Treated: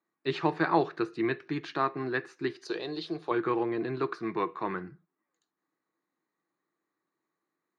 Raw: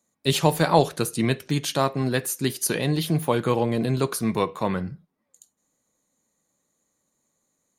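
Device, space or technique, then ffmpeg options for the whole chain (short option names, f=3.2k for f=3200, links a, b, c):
kitchen radio: -filter_complex "[0:a]highpass=210,equalizer=f=230:t=q:w=4:g=-9,equalizer=f=340:t=q:w=4:g=10,equalizer=f=550:t=q:w=4:g=-10,equalizer=f=1.2k:t=q:w=4:g=6,equalizer=f=1.7k:t=q:w=4:g=6,equalizer=f=3.2k:t=q:w=4:g=-10,lowpass=f=3.7k:w=0.5412,lowpass=f=3.7k:w=1.3066,asettb=1/sr,asplit=3[a][b][c];[a]atrim=end=2.654[d];[b]atrim=start=2.65:end=3.31,asetpts=PTS-STARTPTS,afade=t=in:d=0.004:c=qsin,afade=t=out:st=0.656:d=0.004:c=qsin,equalizer=f=125:t=o:w=1:g=-10,equalizer=f=250:t=o:w=1:g=-9,equalizer=f=500:t=o:w=1:g=5,equalizer=f=1k:t=o:w=1:g=-4,equalizer=f=2k:t=o:w=1:g=-11,equalizer=f=4k:t=o:w=1:g=8,equalizer=f=8k:t=o:w=1:g=7[e];[c]atrim=start=3.306[f];[d][e]acrossfade=d=0.004:c1=hsin:c2=qsin[g];[g][f]acrossfade=d=0.004:c1=qsin:c2=hsin,volume=-6.5dB"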